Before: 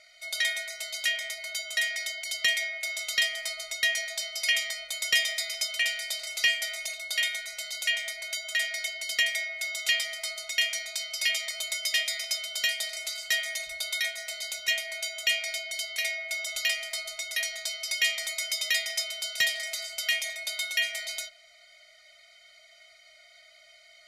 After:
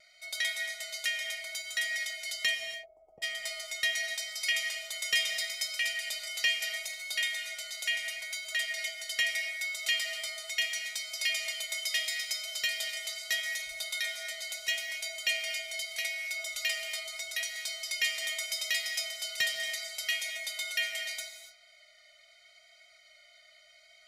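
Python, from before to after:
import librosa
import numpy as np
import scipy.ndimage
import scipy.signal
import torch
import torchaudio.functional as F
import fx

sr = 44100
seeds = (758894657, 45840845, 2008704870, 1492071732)

y = fx.ellip_lowpass(x, sr, hz=810.0, order=4, stop_db=50, at=(2.54, 3.22), fade=0.02)
y = fx.vibrato(y, sr, rate_hz=0.76, depth_cents=15.0)
y = fx.rev_gated(y, sr, seeds[0], gate_ms=310, shape='flat', drr_db=6.5)
y = y * librosa.db_to_amplitude(-4.5)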